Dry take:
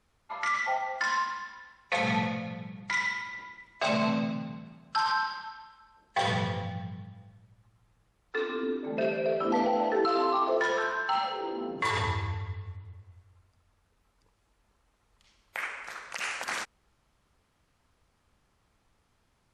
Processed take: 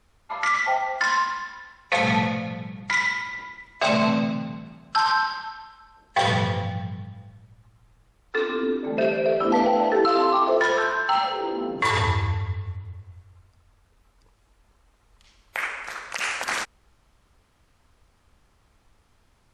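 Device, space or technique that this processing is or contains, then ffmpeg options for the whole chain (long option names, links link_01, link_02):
low shelf boost with a cut just above: -af "lowshelf=frequency=77:gain=6,equalizer=frequency=160:width_type=o:width=0.77:gain=-2.5,volume=6.5dB"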